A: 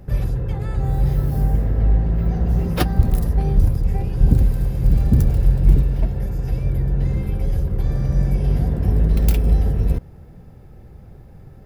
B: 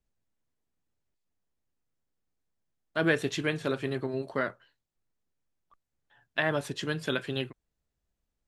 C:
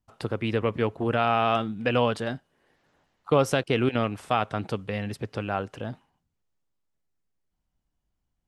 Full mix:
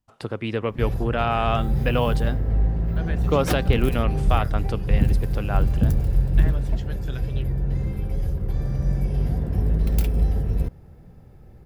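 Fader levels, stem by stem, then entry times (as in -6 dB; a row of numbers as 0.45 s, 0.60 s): -4.5 dB, -10.5 dB, 0.0 dB; 0.70 s, 0.00 s, 0.00 s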